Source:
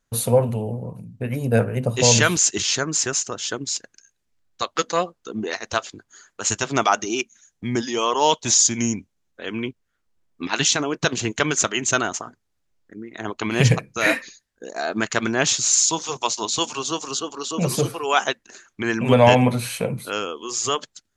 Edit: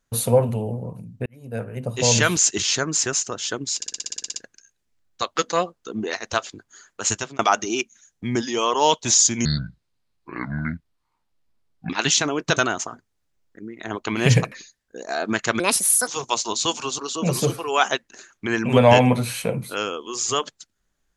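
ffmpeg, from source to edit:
-filter_complex "[0:a]asplit=20[a][b][c][d][e][f][g][h][i][j][k][l][m][n][o][p][q][r][s][t];[a]atrim=end=1.26,asetpts=PTS-STARTPTS,afade=t=out:st=1.256:d=0.004:c=hsin[u];[b]atrim=start=1.26:end=3.822,asetpts=PTS-STARTPTS,afade=t=in:d=1.14[v];[c]atrim=start=3.758:end=3.822[w];[d]atrim=start=3.758:end=3.822[x];[e]atrim=start=3.758:end=3.822[y];[f]atrim=start=3.758:end=3.822[z];[g]atrim=start=3.758:end=3.822[aa];[h]atrim=start=3.758:end=3.822[ab];[i]atrim=start=3.758:end=3.822[ac];[j]atrim=start=3.758:end=3.822[ad];[k]atrim=start=3.758:end=3.822[ae];[l]atrim=start=3.758:end=6.79,asetpts=PTS-STARTPTS,afade=t=out:st=2.752:d=0.28[af];[m]atrim=start=6.79:end=8.854,asetpts=PTS-STARTPTS,afade=t=in:d=0.004:c=hsin[ag];[n]atrim=start=8.85:end=10.44,asetpts=PTS-STARTPTS,asetrate=28665,aresample=44100,atrim=end_sample=107875,asetpts=PTS-STARTPTS[ah];[o]atrim=start=10.436:end=11.112[ai];[p]atrim=start=11.908:end=13.862[aj];[q]atrim=start=14.188:end=15.274[ak];[r]atrim=start=15.27:end=16,asetpts=PTS-STARTPTS,asetrate=67473,aresample=44100,atrim=end_sample=21041,asetpts=PTS-STARTPTS[al];[s]atrim=start=15.996:end=16.912[am];[t]atrim=start=17.338[an];[u][v]concat=n=2:v=0:a=1[ao];[ao][w]acrossfade=d=0.004:c1=hsin:c2=hsin[ap];[ap][x]acrossfade=d=0.004:c1=hsin:c2=hsin[aq];[aq][y]acrossfade=d=0.004:c1=hsin:c2=hsin[ar];[ar][z]acrossfade=d=0.004:c1=hsin:c2=hsin[as];[as][aa]acrossfade=d=0.004:c1=hsin:c2=hsin[at];[at][ab]acrossfade=d=0.004:c1=hsin:c2=hsin[au];[au][ac]acrossfade=d=0.004:c1=hsin:c2=hsin[av];[av][ad]acrossfade=d=0.004:c1=hsin:c2=hsin[aw];[aw][ae]acrossfade=d=0.004:c1=hsin:c2=hsin[ax];[af][ag]concat=n=2:v=0:a=1[ay];[ax][ay]acrossfade=d=0.004:c1=hsin:c2=hsin[az];[az][ah]acrossfade=d=0.004:c1=hsin:c2=hsin[ba];[ba][ai]acrossfade=d=0.004:c1=hsin:c2=hsin[bb];[bb][aj]acrossfade=d=0.004:c1=hsin:c2=hsin[bc];[bc][ak]acrossfade=d=0.004:c1=hsin:c2=hsin[bd];[bd][al]acrossfade=d=0.004:c1=hsin:c2=hsin[be];[be][am]acrossfade=d=0.004:c1=hsin:c2=hsin[bf];[bf][an]acrossfade=d=0.004:c1=hsin:c2=hsin"

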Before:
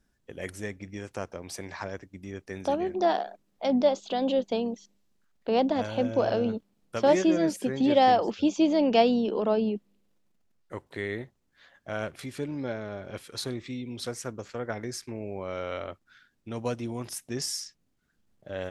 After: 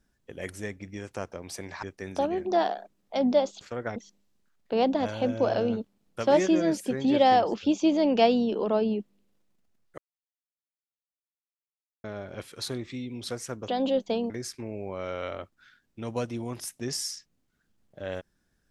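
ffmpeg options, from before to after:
-filter_complex "[0:a]asplit=8[a][b][c][d][e][f][g][h];[a]atrim=end=1.832[i];[b]atrim=start=2.318:end=4.102[j];[c]atrim=start=14.438:end=14.792[k];[d]atrim=start=4.718:end=10.74,asetpts=PTS-STARTPTS,afade=t=out:st=6.018:d=0.004:c=hsin[l];[e]atrim=start=10.74:end=12.8,asetpts=PTS-STARTPTS,volume=0[m];[f]atrim=start=12.8:end=14.442,asetpts=PTS-STARTPTS,afade=t=in:d=0.004:c=hsin[n];[g]atrim=start=4.098:end=4.722[o];[h]atrim=start=14.788[p];[i][j]acrossfade=d=0.004:c1=hsin:c2=hsin[q];[q][k]acrossfade=d=0.004:c1=hsin:c2=hsin[r];[l][m][n]concat=n=3:v=0:a=1[s];[r][s]acrossfade=d=0.004:c1=hsin:c2=hsin[t];[t][o]acrossfade=d=0.004:c1=hsin:c2=hsin[u];[u][p]acrossfade=d=0.004:c1=hsin:c2=hsin"

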